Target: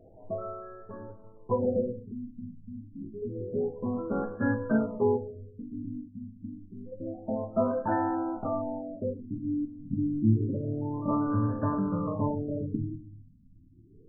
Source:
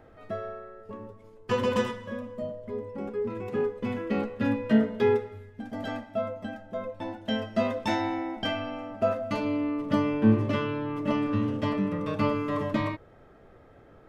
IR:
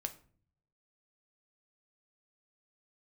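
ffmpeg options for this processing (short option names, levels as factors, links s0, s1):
-filter_complex "[0:a]lowpass=f=3400:t=q:w=4.9[s0];[1:a]atrim=start_sample=2205[s1];[s0][s1]afir=irnorm=-1:irlink=0,afftfilt=real='re*lt(b*sr/1024,290*pow(1800/290,0.5+0.5*sin(2*PI*0.28*pts/sr)))':imag='im*lt(b*sr/1024,290*pow(1800/290,0.5+0.5*sin(2*PI*0.28*pts/sr)))':win_size=1024:overlap=0.75"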